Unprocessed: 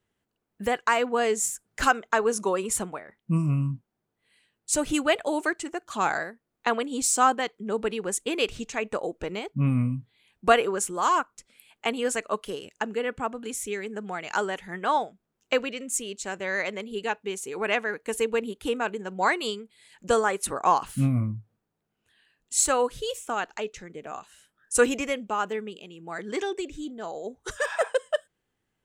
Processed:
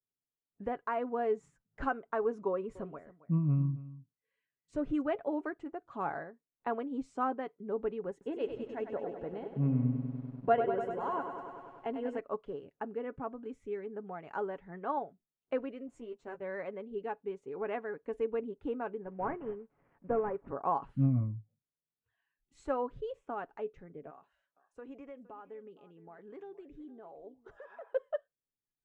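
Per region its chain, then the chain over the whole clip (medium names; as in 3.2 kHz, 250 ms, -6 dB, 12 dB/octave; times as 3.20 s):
2.48–5.02 s: band-stop 840 Hz, Q 5.8 + delay 272 ms -17 dB
8.11–12.19 s: comb of notches 1.2 kHz + bit-crushed delay 98 ms, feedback 80%, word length 8-bit, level -8 dB
15.87–16.42 s: companding laws mixed up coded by A + doubling 13 ms -5 dB
19.03–20.48 s: CVSD coder 16 kbps + low-pass 1.9 kHz
24.10–27.94 s: bass shelf 260 Hz -7.5 dB + compression 2.5:1, threshold -41 dBFS + delay 465 ms -18 dB
whole clip: Bessel low-pass 780 Hz, order 2; spectral noise reduction 17 dB; comb 7.2 ms, depth 36%; trim -6.5 dB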